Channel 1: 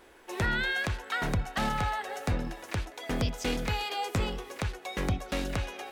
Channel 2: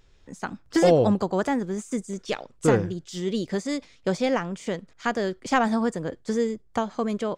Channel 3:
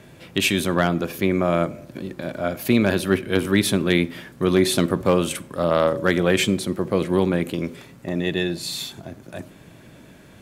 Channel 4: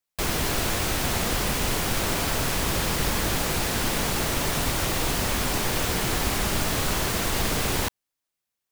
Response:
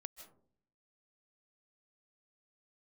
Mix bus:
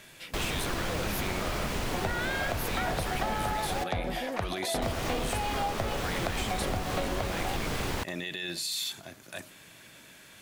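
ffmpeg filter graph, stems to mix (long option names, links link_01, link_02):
-filter_complex "[0:a]lowpass=4900,equalizer=frequency=680:width_type=o:width=0.73:gain=13,adelay=1650,volume=0dB[link_01];[1:a]volume=-13.5dB[link_02];[2:a]tiltshelf=frequency=910:gain=-9.5,volume=-5dB[link_03];[3:a]highshelf=frequency=5600:gain=-10.5,adelay=150,volume=-3dB,asplit=3[link_04][link_05][link_06];[link_04]atrim=end=3.84,asetpts=PTS-STARTPTS,afade=type=out:start_time=3.836:duration=0.004:curve=hsin[link_07];[link_05]atrim=start=3.84:end=4.82,asetpts=PTS-STARTPTS,volume=0[link_08];[link_06]atrim=start=4.82,asetpts=PTS-STARTPTS,afade=type=in:duration=0.004:curve=hsin[link_09];[link_07][link_08][link_09]concat=n=3:v=0:a=1[link_10];[link_02][link_03]amix=inputs=2:normalize=0,alimiter=limit=-23.5dB:level=0:latency=1:release=37,volume=0dB[link_11];[link_01][link_10][link_11]amix=inputs=3:normalize=0,acompressor=threshold=-27dB:ratio=6"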